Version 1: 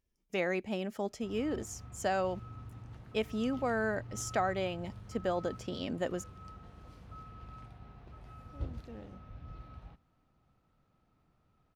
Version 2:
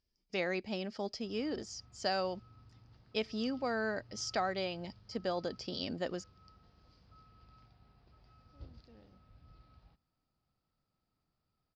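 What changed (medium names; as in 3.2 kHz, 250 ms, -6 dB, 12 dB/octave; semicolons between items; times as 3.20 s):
speech +9.5 dB; master: add four-pole ladder low-pass 5.1 kHz, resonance 80%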